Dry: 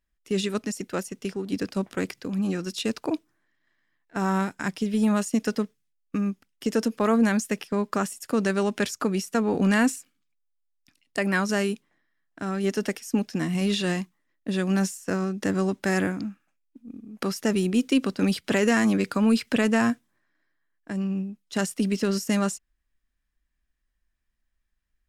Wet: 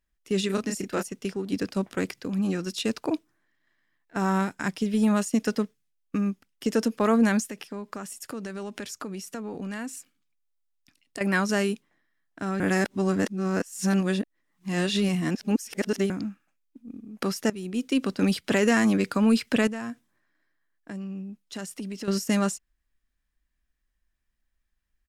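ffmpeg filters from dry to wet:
ffmpeg -i in.wav -filter_complex "[0:a]asplit=3[link_01][link_02][link_03];[link_01]afade=type=out:start_time=0.49:duration=0.02[link_04];[link_02]asplit=2[link_05][link_06];[link_06]adelay=31,volume=-4dB[link_07];[link_05][link_07]amix=inputs=2:normalize=0,afade=type=in:start_time=0.49:duration=0.02,afade=type=out:start_time=1.01:duration=0.02[link_08];[link_03]afade=type=in:start_time=1.01:duration=0.02[link_09];[link_04][link_08][link_09]amix=inputs=3:normalize=0,asettb=1/sr,asplit=3[link_10][link_11][link_12];[link_10]atrim=end=7.444[link_13];[link_11]atrim=start=7.44:end=11.21,asetpts=PTS-STARTPTS,afade=type=in:duration=0.004:curve=qsin,afade=type=out:start_time=3.766:duration=0.004:curve=qsin,acompressor=threshold=-33dB:ratio=5:attack=3.2:release=140:knee=1:detection=peak[link_14];[link_12]atrim=start=11.206[link_15];[link_13][link_14]acrossfade=duration=0.004:curve1=hsin:curve2=qsin[link_16];[link_16][link_15]acrossfade=duration=0.004:curve1=qsin:curve2=hsin,asettb=1/sr,asplit=3[link_17][link_18][link_19];[link_17]atrim=end=19.674[link_20];[link_18]atrim=start=19.67:end=22.08,asetpts=PTS-STARTPTS,afade=type=in:duration=0.004:curve=qsin,afade=type=out:start_time=2.406:duration=0.004:curve=qsin,acompressor=threshold=-35dB:ratio=3:attack=3.2:release=140:knee=1:detection=peak[link_21];[link_19]atrim=start=22.076[link_22];[link_20][link_21]acrossfade=duration=0.004:curve1=hsin:curve2=qsin[link_23];[link_23][link_22]acrossfade=duration=0.004:curve1=qsin:curve2=hsin,asplit=4[link_24][link_25][link_26][link_27];[link_24]atrim=end=12.602[link_28];[link_25]atrim=start=12.598:end=16.102,asetpts=PTS-STARTPTS,areverse[link_29];[link_26]atrim=start=16.098:end=17.5,asetpts=PTS-STARTPTS,afade=type=out:start_time=1.398:duration=0.004:curve=hsin:silence=0.125893[link_30];[link_27]atrim=start=17.5,asetpts=PTS-STARTPTS,afade=type=in:duration=0.66:silence=0.125893[link_31];[link_28][link_29]acrossfade=duration=0.004:curve1=hsin:curve2=hsin[link_32];[link_30][link_31]concat=n=2:v=0:a=1[link_33];[link_32][link_33]acrossfade=duration=0.004:curve1=hsin:curve2=hsin" out.wav

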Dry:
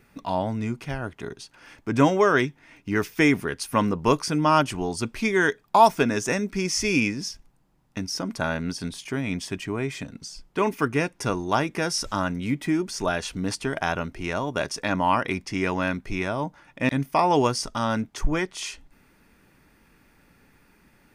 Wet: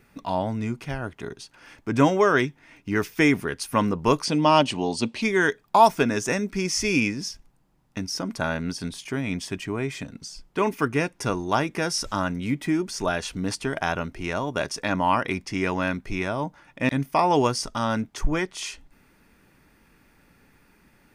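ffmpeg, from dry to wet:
ffmpeg -i in.wav -filter_complex "[0:a]asettb=1/sr,asplit=3[link_01][link_02][link_03];[link_01]atrim=end=4.254[link_04];[link_02]atrim=start=4.25:end=5.22,asetpts=PTS-STARTPTS,afade=type=in:duration=0.004:curve=qsin,afade=type=out:start_time=0.966:duration=0.004:curve=qsin,highpass=110,equalizer=frequency=240:width_type=q:width=4:gain=6,equalizer=frequency=550:width_type=q:width=4:gain=6,equalizer=frequency=870:width_type=q:width=4:gain=4,equalizer=frequency=1400:width_type=q:width=4:gain=-8,equalizer=frequency=2900:width_type=q:width=4:gain=7,equalizer=frequency=4100:width_type=q:width=4:gain=9,lowpass=frequency=9400:width=0.5412,lowpass=frequency=9400:width=1.3066[link_05];[link_03]atrim=start=5.216[link_06];[link_04][link_05]acrossfade=duration=0.004:curve1=hsin:curve2=qsin[link_07];[link_07][link_06]acrossfade=duration=0.004:curve1=qsin:curve2=hsin" out.wav

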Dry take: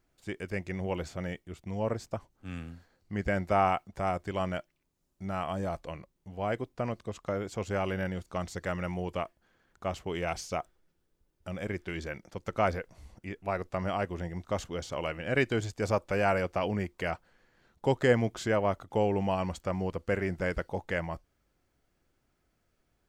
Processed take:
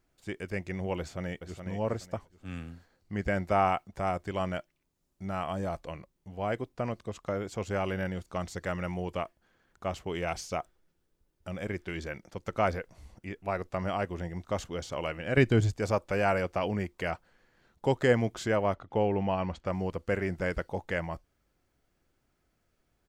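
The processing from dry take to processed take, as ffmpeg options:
ffmpeg -i in.wav -filter_complex "[0:a]asplit=2[link_01][link_02];[link_02]afade=type=in:start_time=0.99:duration=0.01,afade=type=out:start_time=1.65:duration=0.01,aecho=0:1:420|840|1260:0.421697|0.105424|0.026356[link_03];[link_01][link_03]amix=inputs=2:normalize=0,asettb=1/sr,asplit=3[link_04][link_05][link_06];[link_04]atrim=end=15.374[link_07];[link_05]atrim=start=15.37:end=15.77,asetpts=PTS-STARTPTS,afade=type=in:duration=0.004:curve=qsin,afade=type=out:start_time=0.396:duration=0.004:curve=qsin,lowshelf=frequency=270:gain=11.5[link_08];[link_06]atrim=start=15.766[link_09];[link_07][link_08]acrossfade=duration=0.004:curve1=hsin:curve2=qsin[link_10];[link_10][link_09]acrossfade=duration=0.004:curve1=qsin:curve2=hsin,asettb=1/sr,asplit=3[link_11][link_12][link_13];[link_11]atrim=end=18.744[link_14];[link_12]atrim=start=18.74:end=19.66,asetpts=PTS-STARTPTS,afade=type=in:duration=0.004:curve=qsin,afade=type=out:start_time=0.916:duration=0.004:curve=qsin,lowpass=3700[link_15];[link_13]atrim=start=19.656[link_16];[link_14][link_15]acrossfade=duration=0.004:curve1=hsin:curve2=qsin[link_17];[link_17][link_16]acrossfade=duration=0.004:curve1=qsin:curve2=hsin" out.wav

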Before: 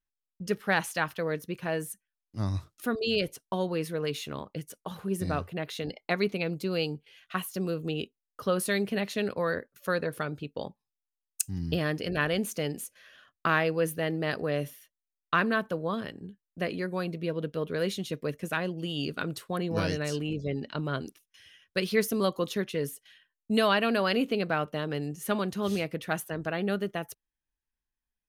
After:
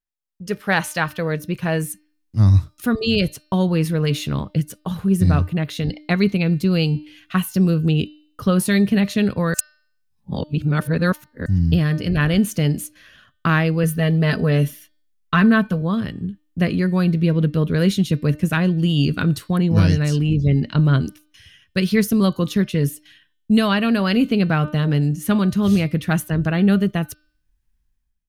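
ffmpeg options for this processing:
ffmpeg -i in.wav -filter_complex "[0:a]asettb=1/sr,asplit=3[link_01][link_02][link_03];[link_01]atrim=end=13.834[link_04];[link_02]atrim=start=13.83:end=15.82,asetpts=PTS-STARTPTS,afade=type=in:duration=0.004:curve=qsin,afade=type=out:start_time=1.986:duration=0.004:curve=qsin,aecho=1:1:4.6:0.58,atrim=end_sample=87759[link_05];[link_03]atrim=start=15.816[link_06];[link_04][link_05]acrossfade=duration=0.004:curve1=hsin:curve2=qsin[link_07];[link_07][link_06]acrossfade=duration=0.004:curve1=qsin:curve2=hsin,asplit=3[link_08][link_09][link_10];[link_08]atrim=end=9.542[link_11];[link_09]atrim=start=9.538:end=11.462,asetpts=PTS-STARTPTS,areverse[link_12];[link_10]atrim=start=11.458[link_13];[link_11][link_12]acrossfade=duration=0.004:curve1=hsin:curve2=hsin[link_14];[link_14][link_13]acrossfade=duration=0.004:curve1=hsin:curve2=hsin,bandreject=frequency=302.4:width_type=h:width=4,bandreject=frequency=604.8:width_type=h:width=4,bandreject=frequency=907.2:width_type=h:width=4,bandreject=frequency=1209.6:width_type=h:width=4,bandreject=frequency=1512:width_type=h:width=4,bandreject=frequency=1814.4:width_type=h:width=4,bandreject=frequency=2116.8:width_type=h:width=4,bandreject=frequency=2419.2:width_type=h:width=4,bandreject=frequency=2721.6:width_type=h:width=4,bandreject=frequency=3024:width_type=h:width=4,bandreject=frequency=3326.4:width_type=h:width=4,bandreject=frequency=3628.8:width_type=h:width=4,bandreject=frequency=3931.2:width_type=h:width=4,bandreject=frequency=4233.6:width_type=h:width=4,bandreject=frequency=4536:width_type=h:width=4,bandreject=frequency=4838.4:width_type=h:width=4,bandreject=frequency=5140.8:width_type=h:width=4,bandreject=frequency=5443.2:width_type=h:width=4,asubboost=boost=5.5:cutoff=200,dynaudnorm=framelen=190:gausssize=5:maxgain=13dB,volume=-3dB" out.wav

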